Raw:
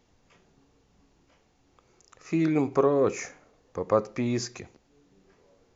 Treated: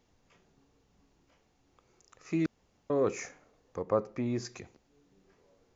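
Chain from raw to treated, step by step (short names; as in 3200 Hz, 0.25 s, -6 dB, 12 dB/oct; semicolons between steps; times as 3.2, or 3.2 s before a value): 2.46–2.9 room tone; 3.82–4.45 high shelf 2200 Hz -9 dB; gain -4.5 dB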